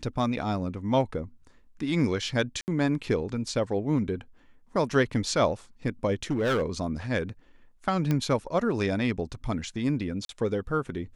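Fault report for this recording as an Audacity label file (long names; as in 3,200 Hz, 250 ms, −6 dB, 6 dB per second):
2.610000	2.680000	drop-out 69 ms
6.300000	6.630000	clipping −22 dBFS
8.110000	8.110000	click −14 dBFS
10.250000	10.290000	drop-out 42 ms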